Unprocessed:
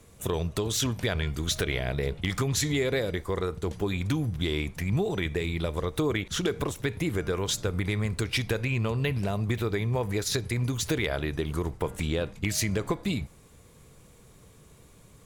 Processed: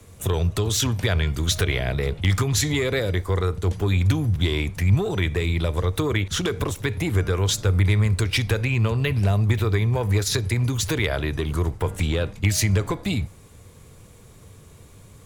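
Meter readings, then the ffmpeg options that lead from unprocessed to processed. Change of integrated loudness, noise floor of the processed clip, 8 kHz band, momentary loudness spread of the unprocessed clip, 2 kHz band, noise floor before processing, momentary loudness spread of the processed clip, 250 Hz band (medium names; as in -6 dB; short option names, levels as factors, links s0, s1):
+6.0 dB, -48 dBFS, +5.0 dB, 4 LU, +5.0 dB, -55 dBFS, 5 LU, +3.5 dB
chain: -filter_complex "[0:a]acrossover=split=130|770|5500[s0][s1][s2][s3];[s0]equalizer=f=96:t=o:w=0.39:g=11.5[s4];[s1]asoftclip=type=tanh:threshold=0.0531[s5];[s4][s5][s2][s3]amix=inputs=4:normalize=0,volume=1.78"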